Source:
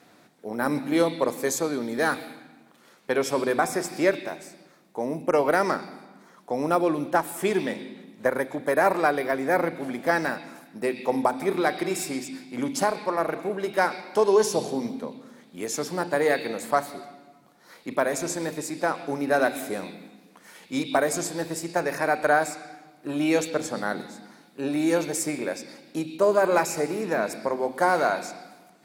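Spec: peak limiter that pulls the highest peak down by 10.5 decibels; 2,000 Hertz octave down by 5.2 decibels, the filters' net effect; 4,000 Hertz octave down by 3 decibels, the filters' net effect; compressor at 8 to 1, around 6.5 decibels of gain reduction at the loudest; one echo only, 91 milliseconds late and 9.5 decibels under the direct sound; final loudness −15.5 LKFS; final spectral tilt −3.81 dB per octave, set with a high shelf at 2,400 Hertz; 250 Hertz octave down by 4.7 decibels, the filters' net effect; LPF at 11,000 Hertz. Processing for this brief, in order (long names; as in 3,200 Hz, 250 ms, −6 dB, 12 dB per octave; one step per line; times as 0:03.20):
low-pass filter 11,000 Hz
parametric band 250 Hz −6.5 dB
parametric band 2,000 Hz −8.5 dB
high-shelf EQ 2,400 Hz +6 dB
parametric band 4,000 Hz −8 dB
downward compressor 8 to 1, threshold −24 dBFS
brickwall limiter −23.5 dBFS
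single-tap delay 91 ms −9.5 dB
level +18.5 dB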